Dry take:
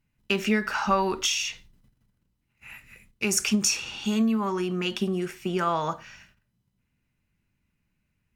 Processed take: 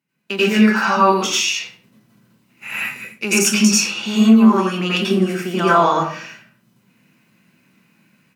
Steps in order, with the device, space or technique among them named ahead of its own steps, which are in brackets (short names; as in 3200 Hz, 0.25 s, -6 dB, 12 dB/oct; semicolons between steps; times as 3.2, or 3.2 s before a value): far laptop microphone (reverb RT60 0.45 s, pre-delay 83 ms, DRR -7.5 dB; HPF 170 Hz 24 dB/oct; AGC gain up to 15 dB); gain -1 dB